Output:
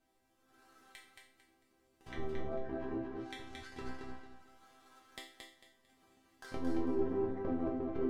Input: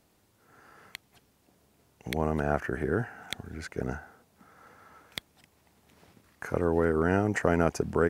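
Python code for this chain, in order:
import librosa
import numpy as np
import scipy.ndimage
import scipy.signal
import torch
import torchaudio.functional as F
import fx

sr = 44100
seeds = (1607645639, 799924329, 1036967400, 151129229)

p1 = fx.halfwave_hold(x, sr)
p2 = fx.env_lowpass_down(p1, sr, base_hz=660.0, full_db=-20.5)
p3 = fx.resonator_bank(p2, sr, root=60, chord='major', decay_s=0.47)
p4 = p3 + fx.echo_feedback(p3, sr, ms=224, feedback_pct=28, wet_db=-4, dry=0)
y = p4 * 10.0 ** (7.0 / 20.0)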